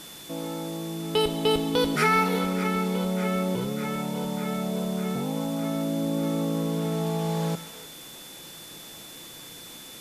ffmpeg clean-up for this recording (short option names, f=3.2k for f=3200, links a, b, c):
-af "bandreject=f=3.5k:w=30,afwtdn=0.0063"